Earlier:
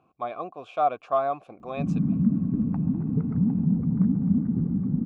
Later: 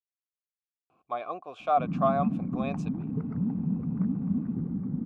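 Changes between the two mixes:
speech: entry +0.90 s; master: add bass shelf 320 Hz -8.5 dB

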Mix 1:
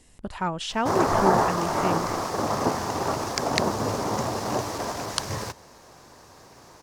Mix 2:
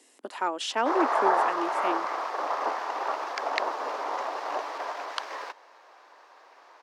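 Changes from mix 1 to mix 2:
background: add three-band isolator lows -19 dB, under 570 Hz, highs -22 dB, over 3.6 kHz; master: add steep high-pass 270 Hz 48 dB/octave

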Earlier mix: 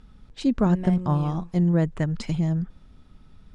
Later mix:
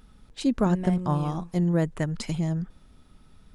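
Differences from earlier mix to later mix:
speech: add tone controls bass -4 dB, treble +2 dB; master: remove low-pass 7.3 kHz 12 dB/octave

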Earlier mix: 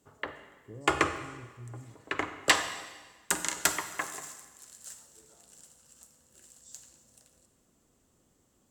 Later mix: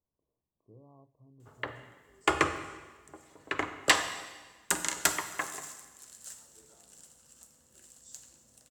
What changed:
speech -9.5 dB; background: entry +1.40 s

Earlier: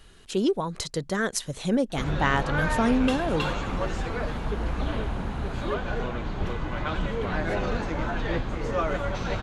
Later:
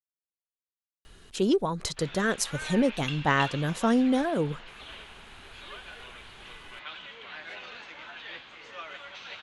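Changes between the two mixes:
speech: entry +1.05 s; background: add band-pass filter 3 kHz, Q 1.9

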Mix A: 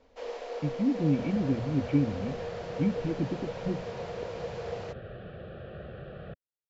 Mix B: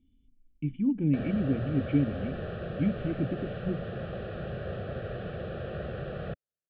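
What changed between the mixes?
first sound: muted; second sound +6.5 dB

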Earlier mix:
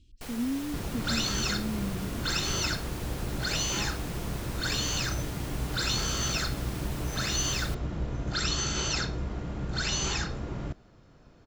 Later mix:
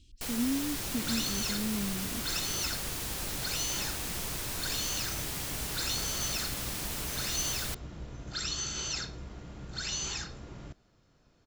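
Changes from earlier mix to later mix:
second sound -10.5 dB; master: add treble shelf 2.8 kHz +9.5 dB

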